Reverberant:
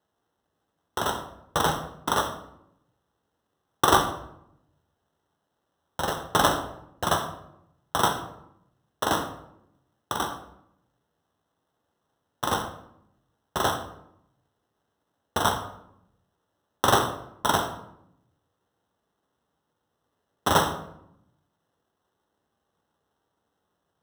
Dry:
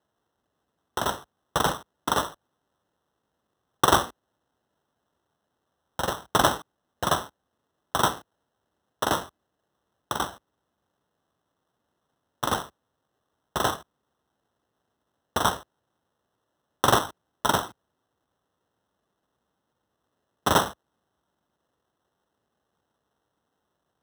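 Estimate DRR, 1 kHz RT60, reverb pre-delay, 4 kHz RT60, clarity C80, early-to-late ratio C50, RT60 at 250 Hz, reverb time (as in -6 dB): 4.5 dB, 0.75 s, 10 ms, 0.50 s, 12.0 dB, 9.5 dB, 1.1 s, 0.75 s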